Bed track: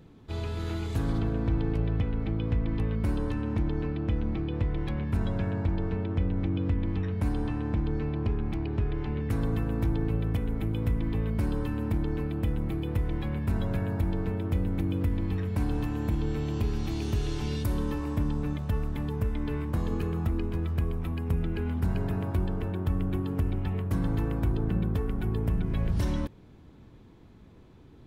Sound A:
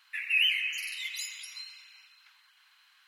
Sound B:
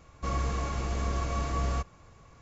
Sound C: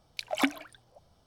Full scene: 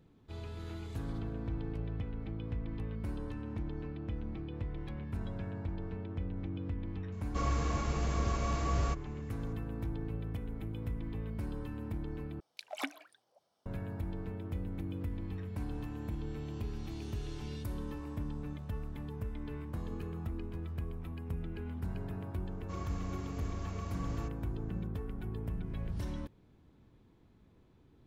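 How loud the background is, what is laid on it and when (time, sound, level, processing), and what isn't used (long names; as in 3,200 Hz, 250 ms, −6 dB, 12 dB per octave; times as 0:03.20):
bed track −10.5 dB
0:07.12: mix in B −2.5 dB
0:12.40: overwrite with C −10 dB + high-pass filter 310 Hz
0:22.46: mix in B −12.5 dB
not used: A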